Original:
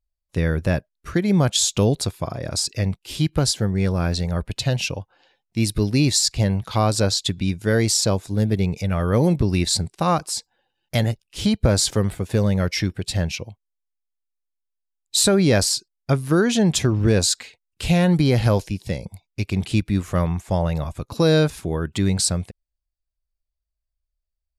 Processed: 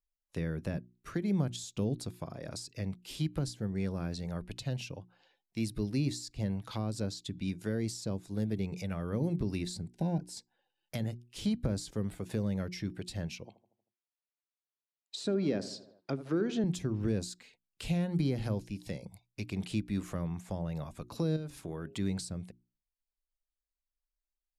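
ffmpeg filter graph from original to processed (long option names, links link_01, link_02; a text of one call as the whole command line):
ffmpeg -i in.wav -filter_complex "[0:a]asettb=1/sr,asplit=3[link_01][link_02][link_03];[link_01]atrim=end=9.884[link_04];[link_02]atrim=start=9.88:end=10.37,asetpts=PTS-STARTPTS,afade=type=in:duration=0.004:curve=qsin,afade=type=out:start_time=0.486:duration=0.004:curve=qsin,asuperstop=centerf=1200:order=20:qfactor=3.1,tiltshelf=frequency=740:gain=5.5[link_05];[link_03]atrim=start=10.366[link_06];[link_04][link_05]acrossfade=duration=0.004:curve1=hsin:curve2=qsin[link_07];[link_07][link_06]acrossfade=duration=0.004:curve1=qsin:curve2=hsin,asettb=1/sr,asplit=3[link_08][link_09][link_10];[link_08]atrim=end=13.454[link_11];[link_09]atrim=start=13.45:end=16.64,asetpts=PTS-STARTPTS,afade=type=in:duration=0.004:curve=qsin,afade=type=out:start_time=3.186:duration=0.004:curve=qsin,asplit=2[link_12][link_13];[link_13]adelay=78,lowpass=frequency=1500:poles=1,volume=-14.5dB,asplit=2[link_14][link_15];[link_15]adelay=78,lowpass=frequency=1500:poles=1,volume=0.54,asplit=2[link_16][link_17];[link_17]adelay=78,lowpass=frequency=1500:poles=1,volume=0.54,asplit=2[link_18][link_19];[link_19]adelay=78,lowpass=frequency=1500:poles=1,volume=0.54,asplit=2[link_20][link_21];[link_21]adelay=78,lowpass=frequency=1500:poles=1,volume=0.54[link_22];[link_12][link_14][link_16][link_18][link_20][link_22]amix=inputs=6:normalize=0,atrim=end_sample=140679,acontrast=34,highpass=270,lowpass=4800[link_23];[link_10]atrim=start=16.636[link_24];[link_11][link_23]acrossfade=duration=0.004:curve1=hsin:curve2=qsin[link_25];[link_25][link_24]acrossfade=duration=0.004:curve1=qsin:curve2=hsin,asettb=1/sr,asplit=3[link_26][link_27][link_28];[link_26]atrim=end=21.364[link_29];[link_27]atrim=start=21.36:end=21.95,asetpts=PTS-STARTPTS,afade=type=in:duration=0.004:curve=qsin,afade=type=out:start_time=0.586:duration=0.004:curve=qsin,bandreject=frequency=135.7:width_type=h:width=4,bandreject=frequency=271.4:width_type=h:width=4,bandreject=frequency=407.1:width_type=h:width=4,bandreject=frequency=542.8:width_type=h:width=4,bandreject=frequency=678.5:width_type=h:width=4,acompressor=threshold=-22dB:ratio=6:attack=3.2:release=140:knee=1:detection=peak[link_30];[link_28]atrim=start=21.946[link_31];[link_29][link_30]acrossfade=duration=0.004:curve1=hsin:curve2=qsin[link_32];[link_32][link_31]acrossfade=duration=0.004:curve1=qsin:curve2=hsin,equalizer=frequency=72:width_type=o:width=1.1:gain=-11.5,bandreject=frequency=60:width_type=h:width=6,bandreject=frequency=120:width_type=h:width=6,bandreject=frequency=180:width_type=h:width=6,bandreject=frequency=240:width_type=h:width=6,bandreject=frequency=300:width_type=h:width=6,bandreject=frequency=360:width_type=h:width=6,acrossover=split=350[link_33][link_34];[link_34]acompressor=threshold=-33dB:ratio=6[link_35];[link_33][link_35]amix=inputs=2:normalize=0,volume=-9dB" out.wav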